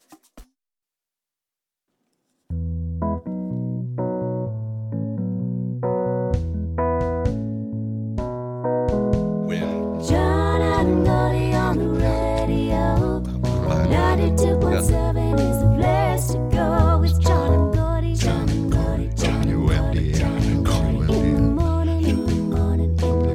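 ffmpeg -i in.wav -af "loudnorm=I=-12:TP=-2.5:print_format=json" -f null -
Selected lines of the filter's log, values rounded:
"input_i" : "-21.2",
"input_tp" : "-4.1",
"input_lra" : "8.5",
"input_thresh" : "-31.3",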